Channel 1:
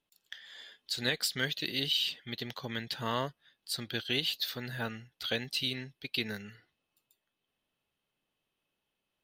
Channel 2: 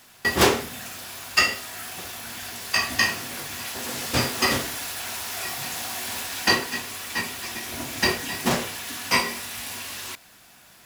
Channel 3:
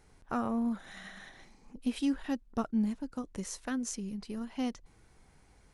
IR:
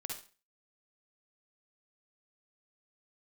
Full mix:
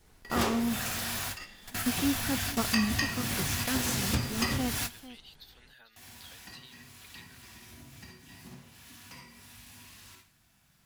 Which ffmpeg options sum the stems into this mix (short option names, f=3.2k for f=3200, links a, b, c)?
-filter_complex "[0:a]acompressor=threshold=-43dB:ratio=4,highpass=f=1.4k:p=1,adelay=1000,volume=-7.5dB,asplit=2[a][b];[b]volume=-12.5dB[c];[1:a]asubboost=boost=5.5:cutoff=190,acompressor=threshold=-30dB:ratio=10,volume=2.5dB,asplit=3[d][e][f];[d]atrim=end=5,asetpts=PTS-STARTPTS,afade=t=out:st=4.996:d=0.004:c=hsin[g];[e]atrim=start=5:end=5.96,asetpts=PTS-STARTPTS,volume=0[h];[f]atrim=start=5.96,asetpts=PTS-STARTPTS,afade=t=in:d=0.004:c=hsin[i];[g][h][i]concat=n=3:v=0:a=1,asplit=2[j][k];[k]volume=-19dB[l];[2:a]adynamicequalizer=threshold=0.00316:dfrequency=1400:dqfactor=1.1:tfrequency=1400:tqfactor=1.1:attack=5:release=100:ratio=0.375:range=1.5:mode=boostabove:tftype=bell,volume=0.5dB,asplit=3[m][n][o];[n]volume=-17dB[p];[o]apad=whole_len=478608[q];[j][q]sidechaingate=range=-33dB:threshold=-49dB:ratio=16:detection=peak[r];[3:a]atrim=start_sample=2205[s];[l][s]afir=irnorm=-1:irlink=0[t];[c][p]amix=inputs=2:normalize=0,aecho=0:1:447:1[u];[a][r][m][t][u]amix=inputs=5:normalize=0"